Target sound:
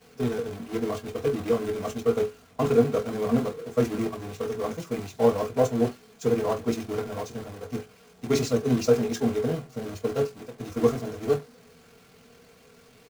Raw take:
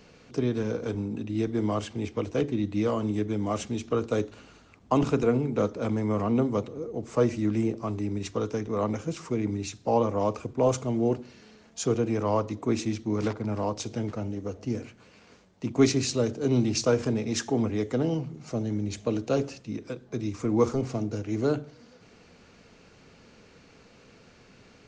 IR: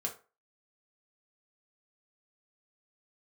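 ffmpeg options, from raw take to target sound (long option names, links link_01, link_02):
-filter_complex "[0:a]aeval=exprs='val(0)+0.5*0.0562*sgn(val(0))':channel_layout=same,agate=range=-33dB:threshold=-19dB:ratio=3:detection=peak[link_01];[1:a]atrim=start_sample=2205,afade=type=out:start_time=0.36:duration=0.01,atrim=end_sample=16317[link_02];[link_01][link_02]afir=irnorm=-1:irlink=0,atempo=1.9,volume=-3dB"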